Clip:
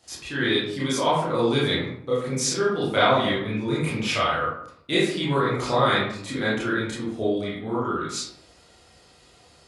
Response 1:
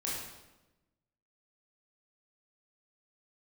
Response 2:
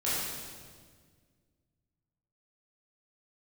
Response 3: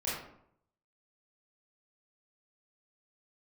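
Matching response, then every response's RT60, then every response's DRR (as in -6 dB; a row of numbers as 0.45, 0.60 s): 3; 1.0, 1.7, 0.70 s; -6.0, -10.5, -9.0 dB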